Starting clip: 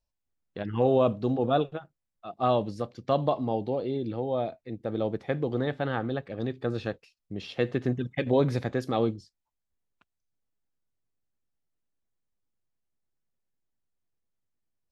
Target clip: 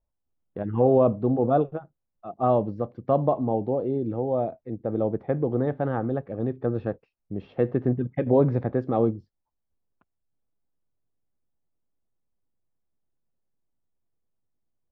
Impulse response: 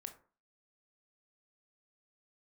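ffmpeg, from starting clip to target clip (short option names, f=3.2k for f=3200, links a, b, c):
-af "lowpass=1k,volume=4dB"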